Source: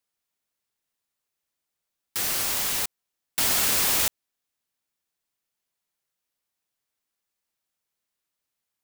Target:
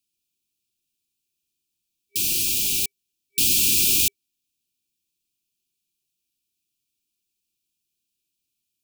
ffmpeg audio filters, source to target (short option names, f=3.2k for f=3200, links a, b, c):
-af "afftfilt=real='re*(1-between(b*sr/4096,400,2300))':imag='im*(1-between(b*sr/4096,400,2300))':win_size=4096:overlap=0.75,volume=4dB"